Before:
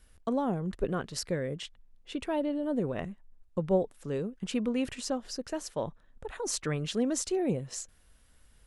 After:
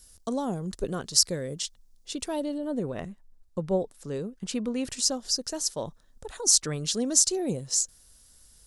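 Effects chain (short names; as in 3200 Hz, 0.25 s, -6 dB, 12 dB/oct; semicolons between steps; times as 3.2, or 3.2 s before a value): resonant high shelf 3600 Hz +14 dB, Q 1.5, from 2.58 s +6 dB, from 4.9 s +12 dB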